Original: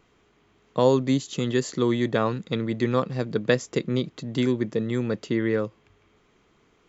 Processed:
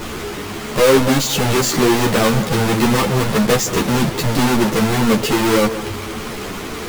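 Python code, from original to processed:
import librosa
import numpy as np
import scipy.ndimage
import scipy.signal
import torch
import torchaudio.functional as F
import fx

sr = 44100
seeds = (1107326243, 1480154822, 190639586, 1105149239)

p1 = fx.halfwave_hold(x, sr)
p2 = fx.power_curve(p1, sr, exponent=0.35)
p3 = p2 + fx.echo_alternate(p2, sr, ms=170, hz=1500.0, feedback_pct=59, wet_db=-12.5, dry=0)
y = fx.ensemble(p3, sr)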